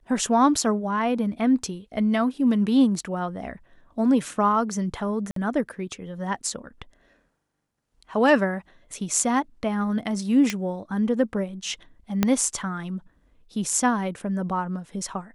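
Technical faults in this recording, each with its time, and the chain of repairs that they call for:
0:05.31–0:05.36: drop-out 53 ms
0:10.50: click −11 dBFS
0:12.23: click −6 dBFS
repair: click removal
repair the gap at 0:05.31, 53 ms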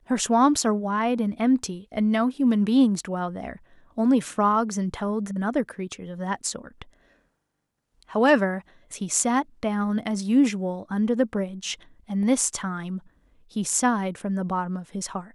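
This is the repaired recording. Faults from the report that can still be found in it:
0:12.23: click

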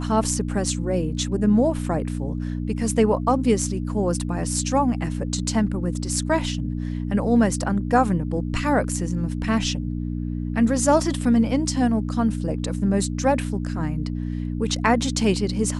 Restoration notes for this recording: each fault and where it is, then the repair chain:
mains hum 60 Hz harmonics 5 −27 dBFS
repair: hum removal 60 Hz, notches 5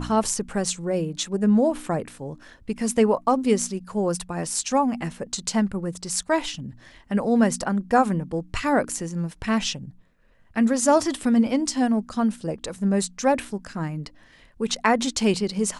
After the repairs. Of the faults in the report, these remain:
none of them is left

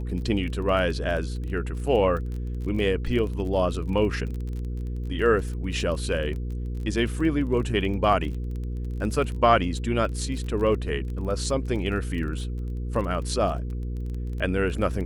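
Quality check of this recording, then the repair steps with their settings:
surface crackle 25 per second −32 dBFS
mains hum 60 Hz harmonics 8 −30 dBFS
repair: click removal
hum removal 60 Hz, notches 8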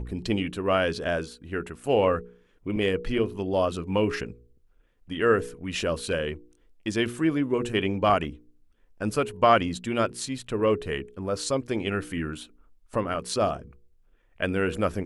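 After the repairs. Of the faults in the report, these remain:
none of them is left

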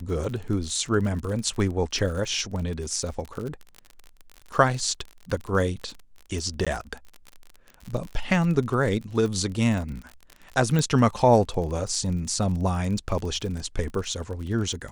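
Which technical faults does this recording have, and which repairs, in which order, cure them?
surface crackle 43 per second −31 dBFS
0:06.65–0:06.67: drop-out 16 ms
0:10.79: click −12 dBFS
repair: click removal
repair the gap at 0:06.65, 16 ms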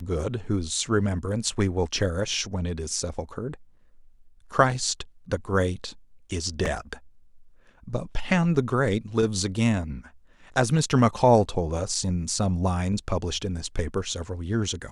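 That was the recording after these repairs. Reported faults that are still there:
0:10.79: click

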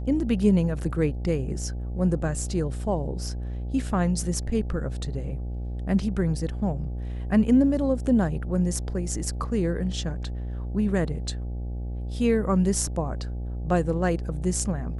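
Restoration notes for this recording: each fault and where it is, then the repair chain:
mains buzz 60 Hz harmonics 14 −31 dBFS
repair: hum removal 60 Hz, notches 14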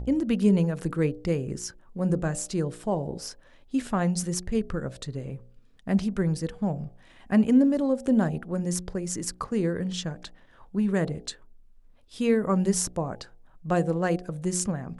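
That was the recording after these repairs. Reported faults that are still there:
none of them is left

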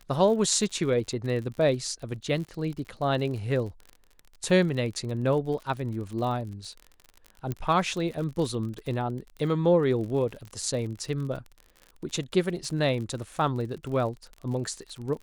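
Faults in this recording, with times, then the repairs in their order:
surface crackle 47 per second −35 dBFS
0:07.52: click −18 dBFS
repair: click removal

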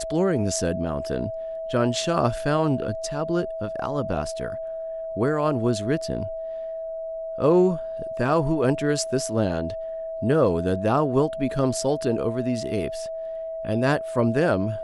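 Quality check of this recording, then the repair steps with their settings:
whistle 650 Hz −29 dBFS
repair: notch filter 650 Hz, Q 30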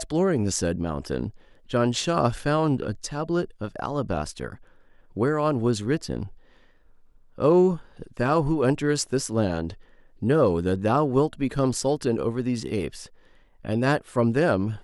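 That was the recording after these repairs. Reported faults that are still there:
none of them is left

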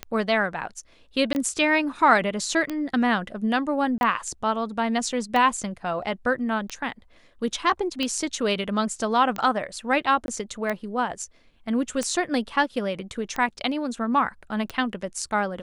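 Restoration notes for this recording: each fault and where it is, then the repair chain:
scratch tick 45 rpm −14 dBFS
0:01.33–0:01.35: drop-out 19 ms
0:03.98–0:04.01: drop-out 31 ms
0:10.26–0:10.28: drop-out 21 ms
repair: click removal
repair the gap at 0:01.33, 19 ms
repair the gap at 0:03.98, 31 ms
repair the gap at 0:10.26, 21 ms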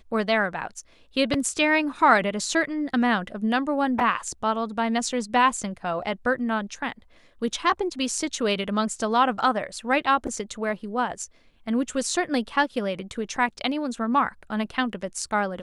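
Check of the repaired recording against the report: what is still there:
none of them is left

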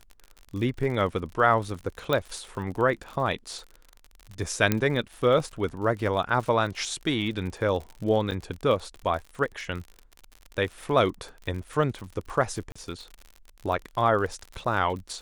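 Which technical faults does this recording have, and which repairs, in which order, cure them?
surface crackle 53 per second −34 dBFS
0:02.13: click −12 dBFS
0:04.72: click −8 dBFS
0:08.31–0:08.32: drop-out 7.4 ms
0:12.72–0:12.76: drop-out 35 ms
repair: click removal
repair the gap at 0:08.31, 7.4 ms
repair the gap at 0:12.72, 35 ms

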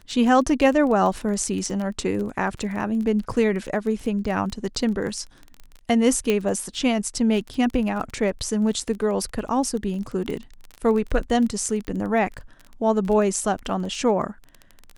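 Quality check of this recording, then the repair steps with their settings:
surface crackle 21 per second −29 dBFS
0:06.30: click −9 dBFS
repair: click removal

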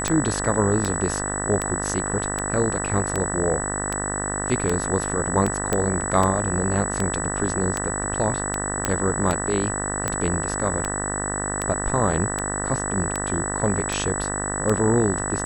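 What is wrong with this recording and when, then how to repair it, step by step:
mains buzz 50 Hz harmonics 39 −29 dBFS
scratch tick 78 rpm −9 dBFS
whistle 7,900 Hz −28 dBFS
0:05.73: click −7 dBFS
0:08.85: click −6 dBFS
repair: click removal
hum removal 50 Hz, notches 39
notch filter 7,900 Hz, Q 30

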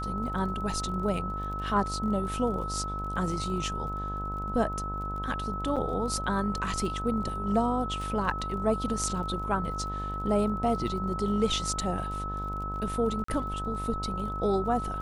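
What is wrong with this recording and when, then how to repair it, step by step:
mains buzz 50 Hz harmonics 26 −36 dBFS
surface crackle 30 per second −39 dBFS
whistle 1,300 Hz −34 dBFS
0:05.76–0:05.77: drop-out 5.8 ms
0:13.24–0:13.28: drop-out 44 ms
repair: click removal
hum removal 50 Hz, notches 26
notch filter 1,300 Hz, Q 30
repair the gap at 0:05.76, 5.8 ms
repair the gap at 0:13.24, 44 ms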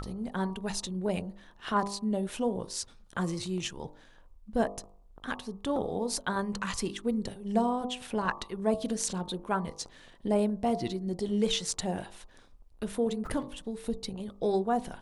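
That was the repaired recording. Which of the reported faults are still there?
none of them is left

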